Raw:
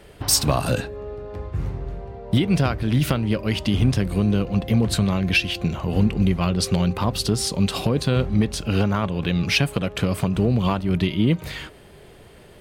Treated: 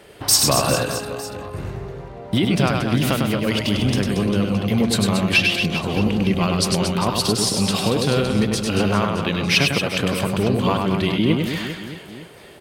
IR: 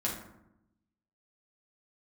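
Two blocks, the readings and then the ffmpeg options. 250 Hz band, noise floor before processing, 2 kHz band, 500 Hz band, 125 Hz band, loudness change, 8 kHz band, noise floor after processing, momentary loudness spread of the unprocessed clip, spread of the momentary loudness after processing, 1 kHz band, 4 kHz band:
+1.5 dB, -47 dBFS, +5.0 dB, +4.0 dB, -1.0 dB, +2.5 dB, +5.0 dB, -40 dBFS, 10 LU, 14 LU, +5.0 dB, +5.0 dB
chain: -filter_complex "[0:a]highpass=f=230:p=1,asplit=2[a][b];[b]aecho=0:1:100|230|399|618.7|904.3:0.631|0.398|0.251|0.158|0.1[c];[a][c]amix=inputs=2:normalize=0,volume=3dB"

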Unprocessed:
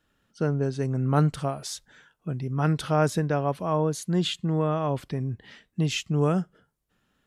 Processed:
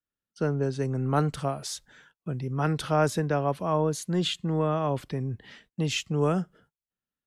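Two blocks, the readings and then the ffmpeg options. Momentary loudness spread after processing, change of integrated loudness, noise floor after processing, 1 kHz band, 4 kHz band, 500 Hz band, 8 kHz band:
11 LU, -1.5 dB, under -85 dBFS, 0.0 dB, 0.0 dB, 0.0 dB, 0.0 dB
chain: -filter_complex "[0:a]agate=range=-25dB:threshold=-58dB:ratio=16:detection=peak,acrossover=split=240|580|1700[a][b][c][d];[a]asoftclip=type=tanh:threshold=-27dB[e];[e][b][c][d]amix=inputs=4:normalize=0"

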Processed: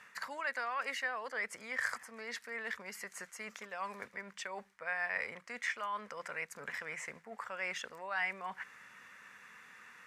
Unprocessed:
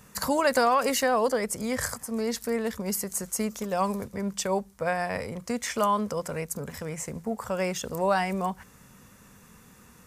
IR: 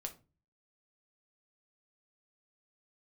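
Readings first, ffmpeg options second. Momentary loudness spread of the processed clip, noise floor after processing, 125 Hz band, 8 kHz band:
15 LU, -63 dBFS, -25.5 dB, -17.5 dB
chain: -af "areverse,acompressor=threshold=-34dB:ratio=6,areverse,bandpass=f=1.9k:t=q:w=2.4:csg=0,volume=9dB"

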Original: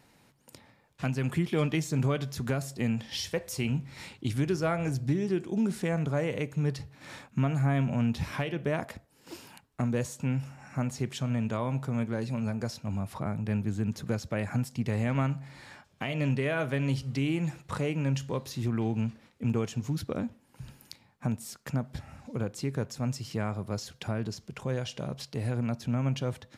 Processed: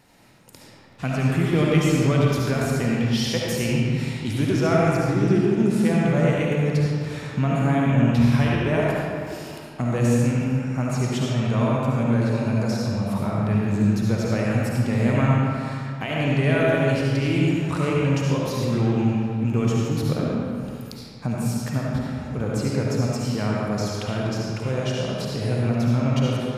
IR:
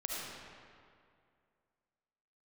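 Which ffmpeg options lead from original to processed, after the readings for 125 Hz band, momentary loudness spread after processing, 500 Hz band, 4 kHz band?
+9.0 dB, 8 LU, +10.0 dB, +8.5 dB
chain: -filter_complex "[1:a]atrim=start_sample=2205[a];[0:a][a]afir=irnorm=-1:irlink=0,volume=6.5dB"

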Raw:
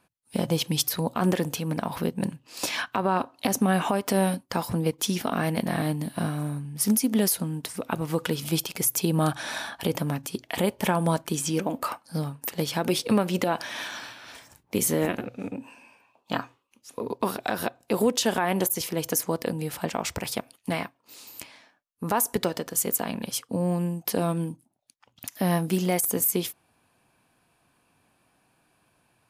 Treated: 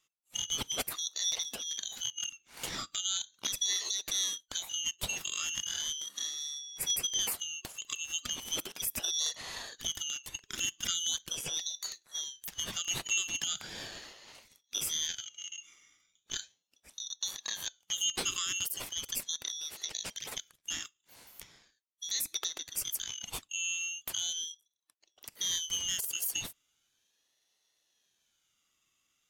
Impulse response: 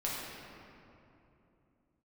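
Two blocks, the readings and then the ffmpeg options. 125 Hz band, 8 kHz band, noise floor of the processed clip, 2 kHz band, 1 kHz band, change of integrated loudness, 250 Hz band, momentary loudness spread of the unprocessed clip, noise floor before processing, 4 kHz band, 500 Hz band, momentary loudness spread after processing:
-26.0 dB, -0.5 dB, -78 dBFS, -7.0 dB, -20.0 dB, -6.5 dB, -28.0 dB, 11 LU, -69 dBFS, +2.0 dB, -25.0 dB, 11 LU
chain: -af "afftfilt=real='real(if(lt(b,272),68*(eq(floor(b/68),0)*3+eq(floor(b/68),1)*2+eq(floor(b/68),2)*1+eq(floor(b/68),3)*0)+mod(b,68),b),0)':imag='imag(if(lt(b,272),68*(eq(floor(b/68),0)*3+eq(floor(b/68),1)*2+eq(floor(b/68),2)*1+eq(floor(b/68),3)*0)+mod(b,68),b),0)':win_size=2048:overlap=0.75,equalizer=f=1.7k:t=o:w=0.8:g=5,aeval=exprs='val(0)*sin(2*PI*1500*n/s+1500*0.25/0.38*sin(2*PI*0.38*n/s))':c=same,volume=-7dB"

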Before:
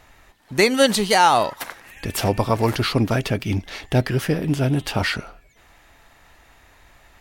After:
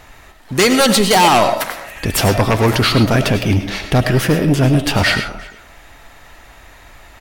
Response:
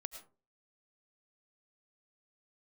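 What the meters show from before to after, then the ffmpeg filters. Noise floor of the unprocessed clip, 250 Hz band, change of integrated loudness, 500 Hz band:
-54 dBFS, +7.0 dB, +6.0 dB, +5.0 dB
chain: -filter_complex "[0:a]aeval=exprs='0.668*sin(PI/2*2.82*val(0)/0.668)':c=same,asplit=2[a][b];[b]adelay=350,highpass=300,lowpass=3.4k,asoftclip=type=hard:threshold=-12dB,volume=-18dB[c];[a][c]amix=inputs=2:normalize=0[d];[1:a]atrim=start_sample=2205[e];[d][e]afir=irnorm=-1:irlink=0"

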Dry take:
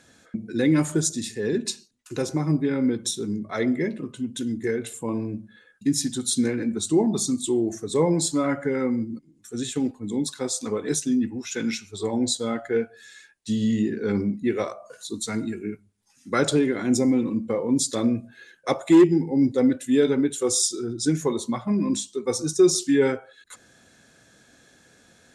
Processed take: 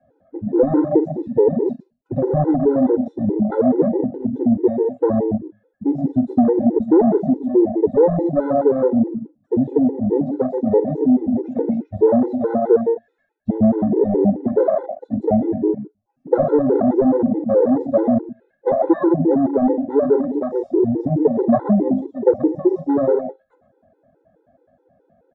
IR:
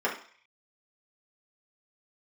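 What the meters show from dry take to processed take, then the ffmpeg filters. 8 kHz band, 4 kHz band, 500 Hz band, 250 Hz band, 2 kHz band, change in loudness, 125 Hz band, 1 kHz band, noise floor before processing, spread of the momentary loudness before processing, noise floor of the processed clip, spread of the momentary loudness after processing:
under -40 dB, under -30 dB, +9.0 dB, +5.5 dB, n/a, +6.0 dB, +3.5 dB, +9.0 dB, -58 dBFS, 11 LU, -66 dBFS, 7 LU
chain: -filter_complex "[0:a]aeval=exprs='0.398*sin(PI/2*2*val(0)/0.398)':c=same,asplit=2[a][b];[b]adelay=122.4,volume=-10dB,highshelf=f=4k:g=-2.76[c];[a][c]amix=inputs=2:normalize=0,acrusher=bits=4:mode=log:mix=0:aa=0.000001,asplit=2[d][e];[e]adelay=47,volume=-13.5dB[f];[d][f]amix=inputs=2:normalize=0,adynamicequalizer=threshold=0.0355:dfrequency=100:dqfactor=0.7:tfrequency=100:tqfactor=0.7:attack=5:release=100:ratio=0.375:range=3:mode=cutabove:tftype=bell,asoftclip=type=tanh:threshold=-9.5dB,lowpass=f=640:t=q:w=4.2,afwtdn=0.112,acompressor=threshold=-15dB:ratio=3,afftfilt=real='re*gt(sin(2*PI*4.7*pts/sr)*(1-2*mod(floor(b*sr/1024/260),2)),0)':imag='im*gt(sin(2*PI*4.7*pts/sr)*(1-2*mod(floor(b*sr/1024/260),2)),0)':win_size=1024:overlap=0.75,volume=5dB"

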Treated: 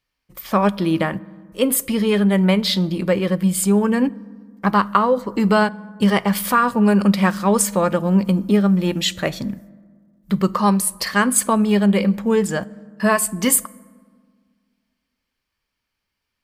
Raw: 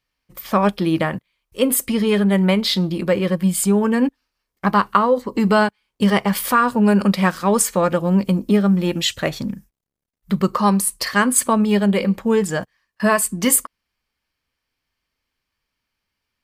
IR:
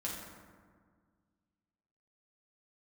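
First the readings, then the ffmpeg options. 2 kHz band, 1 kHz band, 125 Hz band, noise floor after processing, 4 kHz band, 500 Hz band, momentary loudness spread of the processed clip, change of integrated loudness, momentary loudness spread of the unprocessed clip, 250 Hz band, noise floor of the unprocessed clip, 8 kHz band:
-0.5 dB, -0.5 dB, +0.5 dB, -79 dBFS, -0.5 dB, -0.5 dB, 9 LU, 0.0 dB, 7 LU, +0.5 dB, -80 dBFS, -0.5 dB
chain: -filter_complex "[0:a]asplit=2[a][b];[1:a]atrim=start_sample=2205[c];[b][c]afir=irnorm=-1:irlink=0,volume=-20dB[d];[a][d]amix=inputs=2:normalize=0,volume=-1dB"

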